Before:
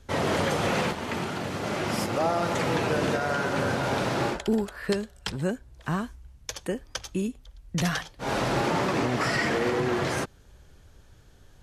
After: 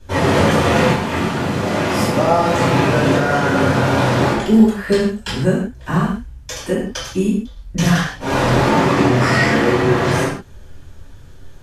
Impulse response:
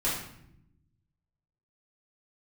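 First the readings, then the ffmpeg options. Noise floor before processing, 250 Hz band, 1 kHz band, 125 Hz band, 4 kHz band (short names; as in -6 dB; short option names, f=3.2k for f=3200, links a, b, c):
-54 dBFS, +13.5 dB, +10.5 dB, +13.5 dB, +9.0 dB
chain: -filter_complex "[1:a]atrim=start_sample=2205,afade=t=out:st=0.22:d=0.01,atrim=end_sample=10143[a];[0:a][a]afir=irnorm=-1:irlink=0,volume=1.5dB"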